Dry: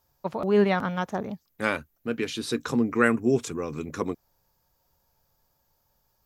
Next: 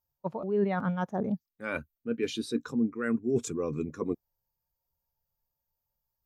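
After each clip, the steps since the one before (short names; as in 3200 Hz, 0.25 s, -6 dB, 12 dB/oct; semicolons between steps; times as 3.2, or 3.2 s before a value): high shelf 6200 Hz +7 dB; reverse; compressor 12:1, threshold -30 dBFS, peak gain reduction 16 dB; reverse; spectral expander 1.5:1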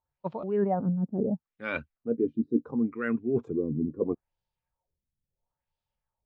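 LFO low-pass sine 0.73 Hz 240–3600 Hz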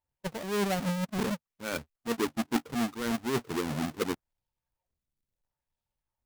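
half-waves squared off; gain -6 dB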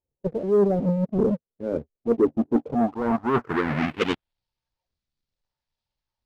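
low-pass sweep 450 Hz -> 4600 Hz, 2.47–4.43; sample leveller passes 1; gain +3 dB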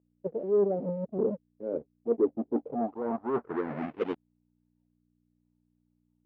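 hum 60 Hz, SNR 31 dB; band-pass 480 Hz, Q 1; gain -4.5 dB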